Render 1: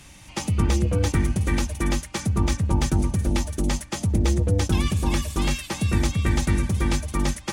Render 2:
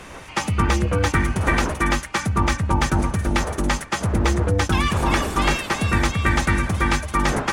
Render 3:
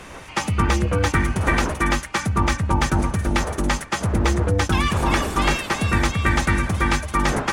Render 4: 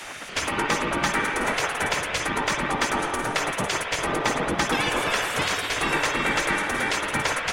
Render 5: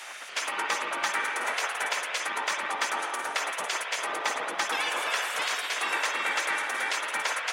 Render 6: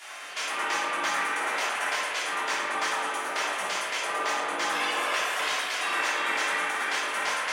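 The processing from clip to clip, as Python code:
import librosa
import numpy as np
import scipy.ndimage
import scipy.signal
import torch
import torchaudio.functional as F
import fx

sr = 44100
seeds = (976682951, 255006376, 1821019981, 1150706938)

y1 = fx.dmg_wind(x, sr, seeds[0], corner_hz=420.0, level_db=-36.0)
y1 = fx.peak_eq(y1, sr, hz=1400.0, db=13.0, octaves=2.0)
y2 = y1
y3 = fx.rev_spring(y2, sr, rt60_s=1.8, pass_ms=(49, 54), chirp_ms=60, drr_db=1.0)
y3 = fx.spec_gate(y3, sr, threshold_db=-10, keep='weak')
y3 = fx.band_squash(y3, sr, depth_pct=40)
y4 = scipy.signal.sosfilt(scipy.signal.butter(2, 660.0, 'highpass', fs=sr, output='sos'), y3)
y4 = y4 * librosa.db_to_amplitude(-3.5)
y5 = fx.room_shoebox(y4, sr, seeds[1], volume_m3=330.0, walls='mixed', distance_m=3.2)
y5 = y5 * librosa.db_to_amplitude(-7.5)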